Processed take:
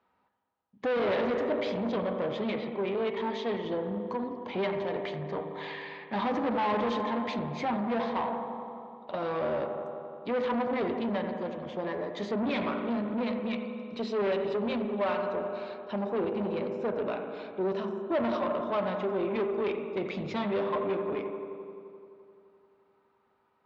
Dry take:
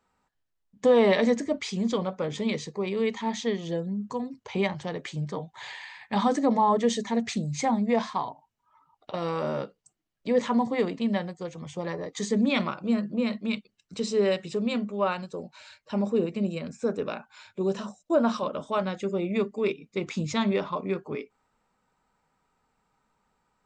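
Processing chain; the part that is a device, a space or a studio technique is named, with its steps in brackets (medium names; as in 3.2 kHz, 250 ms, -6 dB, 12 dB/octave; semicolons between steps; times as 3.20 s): spring tank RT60 2 s, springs 38 ms, chirp 65 ms, DRR 10 dB; 2.52–3.17 s: low-pass 3.8 kHz 24 dB/octave; analogue delay pedal into a guitar amplifier (bucket-brigade echo 86 ms, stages 1024, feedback 80%, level -11.5 dB; valve stage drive 27 dB, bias 0.3; cabinet simulation 91–3900 Hz, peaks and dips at 160 Hz -6 dB, 360 Hz +3 dB, 630 Hz +4 dB, 1 kHz +3 dB)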